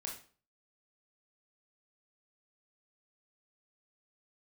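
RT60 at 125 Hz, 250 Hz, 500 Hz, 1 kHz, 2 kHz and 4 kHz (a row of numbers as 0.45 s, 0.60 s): 0.50 s, 0.45 s, 0.45 s, 0.40 s, 0.35 s, 0.35 s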